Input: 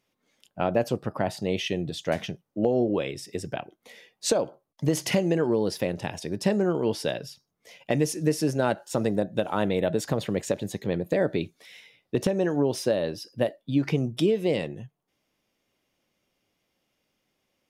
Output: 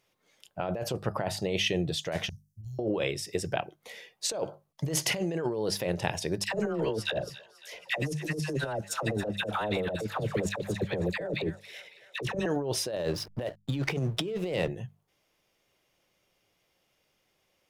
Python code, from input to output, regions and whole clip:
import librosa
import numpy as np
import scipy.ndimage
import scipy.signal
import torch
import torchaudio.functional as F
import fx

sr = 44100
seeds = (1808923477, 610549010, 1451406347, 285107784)

y = fx.chain(x, sr, fx.cheby2_bandstop(low_hz=270.0, high_hz=2400.0, order=4, stop_db=50),
    fx.over_compress(threshold_db=-42.0, ratio=-0.5), at=(2.29, 2.79))
y = fx.chain(y, sr, fx.transient(attack_db=4, sustain_db=-10),
    fx.dispersion(late='lows', ms=84.0, hz=940.0),
    fx.echo_wet_highpass(ms=276, feedback_pct=59, hz=1500.0, wet_db=-16.5), at=(6.44, 12.46))
y = fx.chain(y, sr, fx.backlash(play_db=-41.0),
    fx.band_squash(depth_pct=70), at=(12.96, 14.68))
y = fx.peak_eq(y, sr, hz=250.0, db=-10.0, octaves=0.56)
y = fx.hum_notches(y, sr, base_hz=50, count=4)
y = fx.over_compress(y, sr, threshold_db=-30.0, ratio=-1.0)